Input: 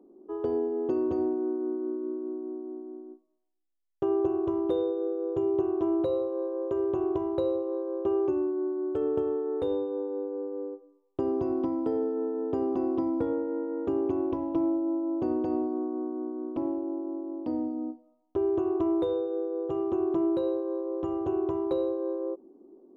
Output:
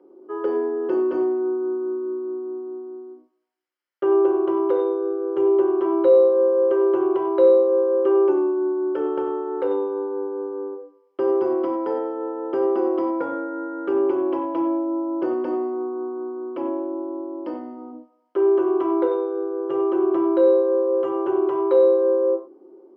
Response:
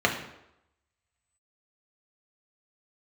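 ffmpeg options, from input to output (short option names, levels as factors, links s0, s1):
-filter_complex "[0:a]highpass=400,acrossover=split=1000[s0][s1];[s1]acontrast=37[s2];[s0][s2]amix=inputs=2:normalize=0[s3];[1:a]atrim=start_sample=2205,atrim=end_sample=4410,asetrate=32634,aresample=44100[s4];[s3][s4]afir=irnorm=-1:irlink=0,volume=0.355"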